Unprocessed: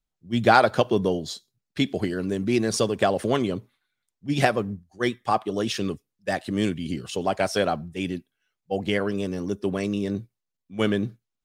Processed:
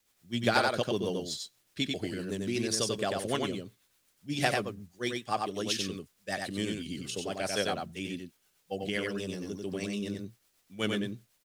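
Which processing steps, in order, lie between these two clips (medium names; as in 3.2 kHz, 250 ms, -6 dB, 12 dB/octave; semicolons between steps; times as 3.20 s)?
treble shelf 2.2 kHz +11 dB; word length cut 10-bit, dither triangular; rotary cabinet horn 8 Hz; on a send: delay 93 ms -3.5 dB; on the sum: trim -9 dB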